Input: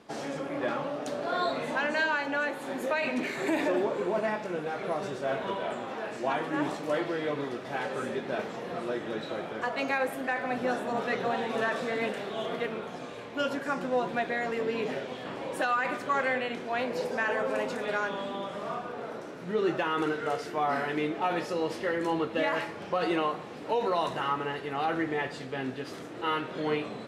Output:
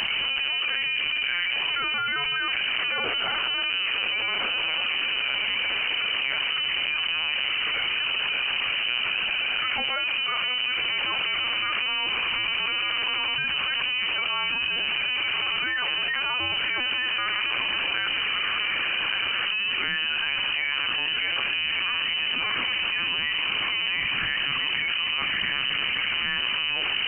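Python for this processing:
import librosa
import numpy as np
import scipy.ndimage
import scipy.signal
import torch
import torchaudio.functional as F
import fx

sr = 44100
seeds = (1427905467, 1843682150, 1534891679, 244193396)

y = fx.highpass(x, sr, hz=120.0, slope=6, at=(20.95, 23.0))
y = np.clip(10.0 ** (22.5 / 20.0) * y, -1.0, 1.0) / 10.0 ** (22.5 / 20.0)
y = fx.echo_diffused(y, sr, ms=1242, feedback_pct=46, wet_db=-3.5)
y = fx.lpc_vocoder(y, sr, seeds[0], excitation='pitch_kept', order=10)
y = fx.freq_invert(y, sr, carrier_hz=3000)
y = fx.env_flatten(y, sr, amount_pct=100)
y = y * 10.0 ** (-3.0 / 20.0)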